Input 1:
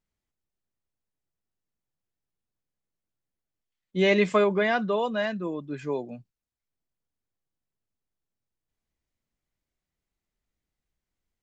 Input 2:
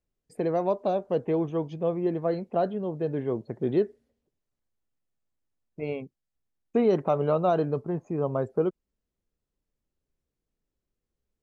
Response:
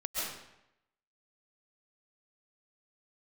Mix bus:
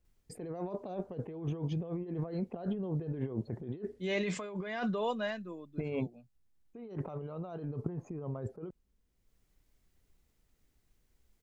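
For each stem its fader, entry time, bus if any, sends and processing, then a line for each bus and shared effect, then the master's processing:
-0.5 dB, 0.05 s, no send, peak limiter -16 dBFS, peak gain reduction 5 dB; treble shelf 6.8 kHz +5 dB; auto duck -23 dB, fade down 1.25 s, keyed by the second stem
-3.5 dB, 0.00 s, no send, peaking EQ 610 Hz -3.5 dB 0.26 oct; transient shaper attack +2 dB, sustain -2 dB; bass shelf 150 Hz +9 dB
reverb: none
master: compressor with a negative ratio -38 dBFS, ratio -1

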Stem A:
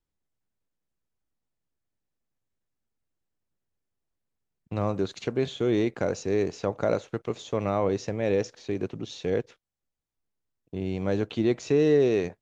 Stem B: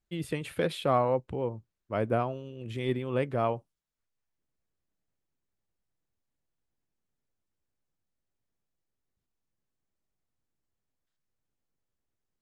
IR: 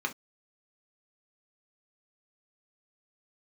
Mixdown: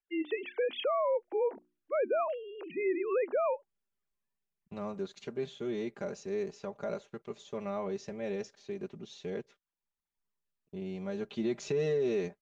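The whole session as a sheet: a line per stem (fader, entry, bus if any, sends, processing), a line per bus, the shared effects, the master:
11.12 s -23.5 dB -> 11.65 s -14 dB, 0.00 s, no send, comb 5 ms, depth 82%; level rider gain up to 15 dB
+3.0 dB, 0.00 s, no send, formants replaced by sine waves; high-pass 270 Hz 24 dB/octave; hum notches 60/120/180/240/300/360 Hz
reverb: none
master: peak limiter -23.5 dBFS, peak gain reduction 9.5 dB

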